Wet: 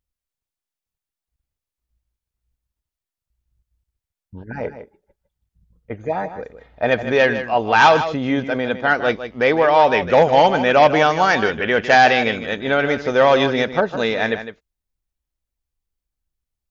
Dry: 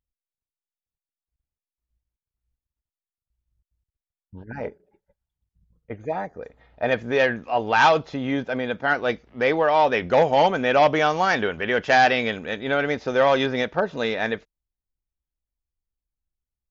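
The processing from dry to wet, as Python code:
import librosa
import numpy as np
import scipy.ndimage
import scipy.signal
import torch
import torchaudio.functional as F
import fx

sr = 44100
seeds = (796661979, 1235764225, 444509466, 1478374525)

y = x + 10.0 ** (-11.0 / 20.0) * np.pad(x, (int(156 * sr / 1000.0), 0))[:len(x)]
y = y * 10.0 ** (4.5 / 20.0)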